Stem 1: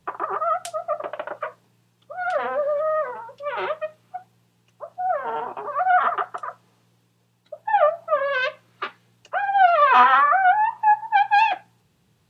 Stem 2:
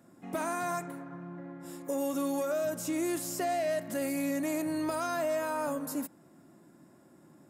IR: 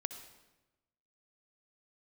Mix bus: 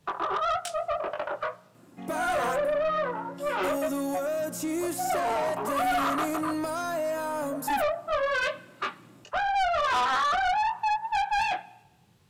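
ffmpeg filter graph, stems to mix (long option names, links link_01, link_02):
-filter_complex "[0:a]acompressor=threshold=-19dB:ratio=2.5,flanger=delay=20:depth=4.2:speed=1.7,volume=2.5dB,asplit=2[link_01][link_02];[link_02]volume=-13.5dB[link_03];[1:a]adelay=1750,volume=3dB[link_04];[2:a]atrim=start_sample=2205[link_05];[link_03][link_05]afir=irnorm=-1:irlink=0[link_06];[link_01][link_04][link_06]amix=inputs=3:normalize=0,asoftclip=type=tanh:threshold=-22.5dB"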